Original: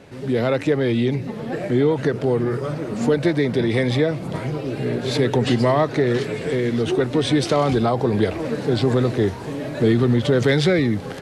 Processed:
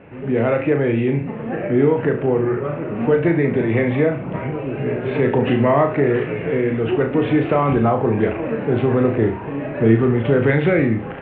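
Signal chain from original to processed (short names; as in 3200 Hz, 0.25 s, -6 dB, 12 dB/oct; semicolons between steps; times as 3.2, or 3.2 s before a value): elliptic low-pass 2700 Hz, stop band 50 dB; flutter echo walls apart 6.1 m, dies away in 0.36 s; gain +1.5 dB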